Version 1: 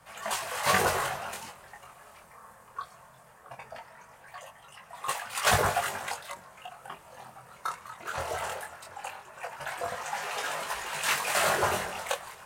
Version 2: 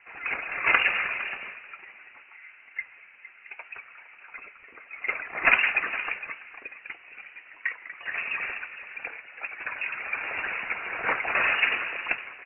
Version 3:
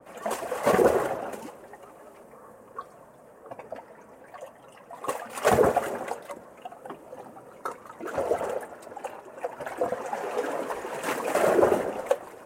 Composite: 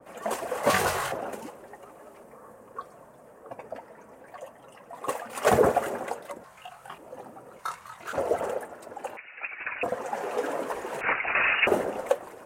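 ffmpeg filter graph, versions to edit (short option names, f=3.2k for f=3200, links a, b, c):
-filter_complex "[0:a]asplit=3[a][b][c];[1:a]asplit=2[d][e];[2:a]asplit=6[f][g][h][i][j][k];[f]atrim=end=0.702[l];[a]atrim=start=0.698:end=1.122[m];[g]atrim=start=1.118:end=6.442[n];[b]atrim=start=6.438:end=6.982[o];[h]atrim=start=6.978:end=7.592[p];[c]atrim=start=7.588:end=8.132[q];[i]atrim=start=8.128:end=9.172[r];[d]atrim=start=9.168:end=9.832[s];[j]atrim=start=9.828:end=11.012[t];[e]atrim=start=11.008:end=11.672[u];[k]atrim=start=11.668[v];[l][m]acrossfade=d=0.004:c1=hsin:c2=hsin[w];[w][n]acrossfade=d=0.004:c1=hsin:c2=hsin[x];[x][o]acrossfade=d=0.004:c1=hsin:c2=hsin[y];[y][p]acrossfade=d=0.004:c1=hsin:c2=hsin[z];[z][q]acrossfade=d=0.004:c1=hsin:c2=hsin[aa];[aa][r]acrossfade=d=0.004:c1=hsin:c2=hsin[ab];[ab][s]acrossfade=d=0.004:c1=hsin:c2=hsin[ac];[ac][t]acrossfade=d=0.004:c1=hsin:c2=hsin[ad];[ad][u]acrossfade=d=0.004:c1=hsin:c2=hsin[ae];[ae][v]acrossfade=d=0.004:c1=hsin:c2=hsin"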